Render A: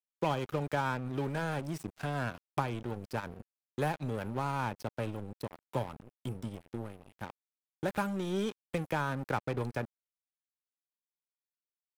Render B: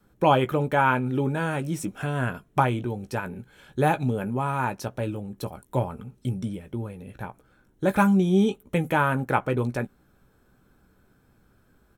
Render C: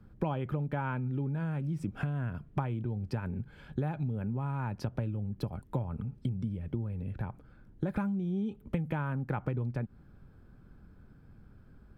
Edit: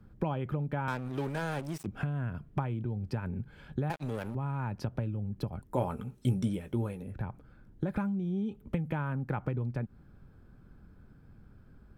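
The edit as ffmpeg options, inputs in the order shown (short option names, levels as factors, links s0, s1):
-filter_complex "[0:a]asplit=2[s0][s1];[2:a]asplit=4[s2][s3][s4][s5];[s2]atrim=end=0.882[s6];[s0]atrim=start=0.878:end=1.862[s7];[s3]atrim=start=1.858:end=3.902[s8];[s1]atrim=start=3.898:end=4.352[s9];[s4]atrim=start=4.348:end=5.9[s10];[1:a]atrim=start=5.66:end=7.18[s11];[s5]atrim=start=6.94[s12];[s6][s7]acrossfade=d=0.004:c1=hsin:c2=hsin[s13];[s13][s8]acrossfade=d=0.004:c1=hsin:c2=hsin[s14];[s14][s9]acrossfade=d=0.004:c1=hsin:c2=hsin[s15];[s15][s10]acrossfade=d=0.004:c1=hsin:c2=hsin[s16];[s16][s11]acrossfade=d=0.24:c1=tri:c2=tri[s17];[s17][s12]acrossfade=d=0.24:c1=tri:c2=tri"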